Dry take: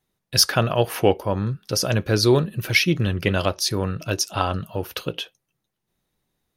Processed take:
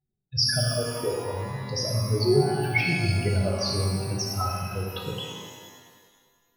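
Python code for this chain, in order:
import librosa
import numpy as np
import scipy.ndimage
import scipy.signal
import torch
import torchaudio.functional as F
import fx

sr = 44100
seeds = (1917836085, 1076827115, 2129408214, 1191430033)

y = fx.spec_expand(x, sr, power=3.0)
y = fx.level_steps(y, sr, step_db=10, at=(0.59, 1.51))
y = fx.rev_shimmer(y, sr, seeds[0], rt60_s=1.7, semitones=12, shimmer_db=-8, drr_db=-2.0)
y = y * 10.0 ** (-7.5 / 20.0)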